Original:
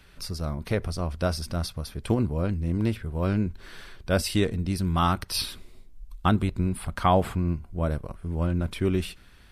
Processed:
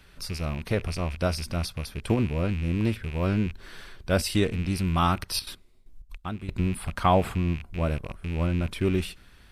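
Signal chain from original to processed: rattle on loud lows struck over -36 dBFS, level -29 dBFS; 5.26–6.58 s: trance gate "...xx.x." 192 bpm -12 dB

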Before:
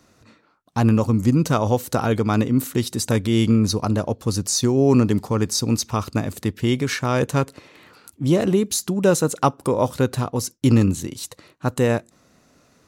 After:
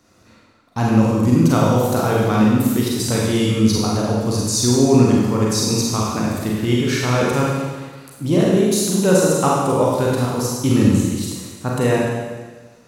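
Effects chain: Schroeder reverb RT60 1.4 s, combs from 33 ms, DRR -4.5 dB; trim -2 dB

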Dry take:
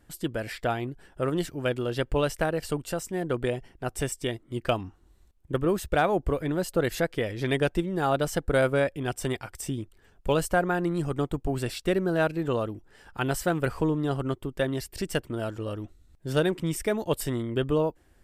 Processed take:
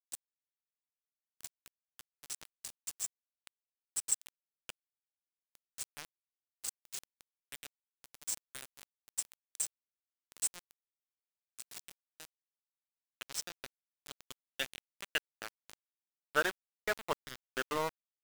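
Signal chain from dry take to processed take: band-pass sweep 7.7 kHz -> 1.4 kHz, 12.61–16.18 s; small samples zeroed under -37.5 dBFS; trim +5.5 dB

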